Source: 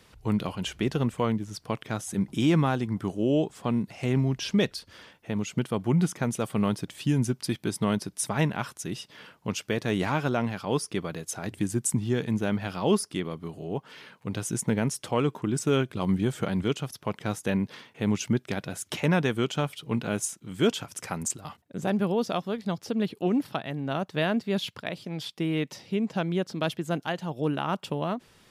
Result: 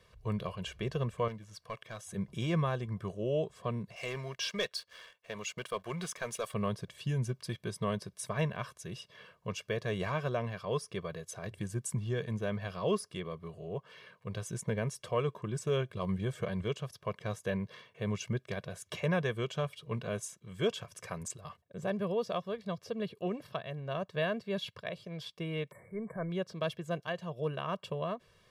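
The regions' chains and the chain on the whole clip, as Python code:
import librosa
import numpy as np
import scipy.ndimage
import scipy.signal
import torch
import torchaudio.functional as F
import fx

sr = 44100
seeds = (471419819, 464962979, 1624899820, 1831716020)

y = fx.chain(x, sr, fx.low_shelf(hz=440.0, db=-9.0),
    fx.notch(hz=410.0, q=7.2),
    fx.overload_stage(gain_db=26.5), at=(1.28, 2.05))
y = fx.chain(y, sr, fx.highpass(hz=1200.0, slope=6),
    fx.leveller(passes=2), at=(3.96, 6.54))
y = fx.chain(y, sr, fx.transient(attack_db=-7, sustain_db=4),
    fx.brickwall_bandstop(low_hz=2300.0, high_hz=7400.0), at=(25.71, 26.3))
y = fx.high_shelf(y, sr, hz=5600.0, db=-8.0)
y = y + 0.83 * np.pad(y, (int(1.8 * sr / 1000.0), 0))[:len(y)]
y = F.gain(torch.from_numpy(y), -8.0).numpy()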